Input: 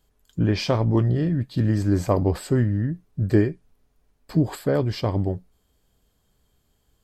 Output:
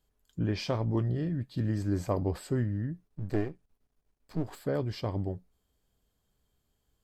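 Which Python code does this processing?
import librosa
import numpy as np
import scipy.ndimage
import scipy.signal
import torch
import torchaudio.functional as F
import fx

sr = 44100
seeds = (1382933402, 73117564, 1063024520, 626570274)

y = fx.halfwave_gain(x, sr, db=-12.0, at=(3.07, 4.6), fade=0.02)
y = F.gain(torch.from_numpy(y), -9.0).numpy()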